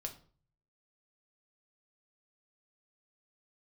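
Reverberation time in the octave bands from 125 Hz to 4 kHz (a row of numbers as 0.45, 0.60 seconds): 0.85, 0.55, 0.50, 0.45, 0.35, 0.35 seconds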